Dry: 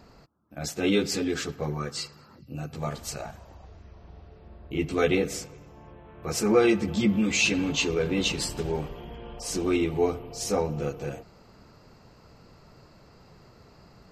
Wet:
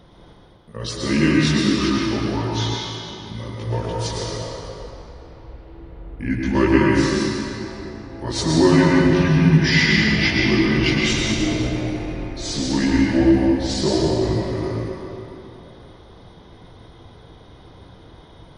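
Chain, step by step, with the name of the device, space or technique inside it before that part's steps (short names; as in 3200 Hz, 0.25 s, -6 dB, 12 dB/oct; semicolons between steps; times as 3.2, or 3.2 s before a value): slowed and reverbed (varispeed -24%; reverb RT60 3.1 s, pre-delay 0.102 s, DRR -3 dB); gain +4 dB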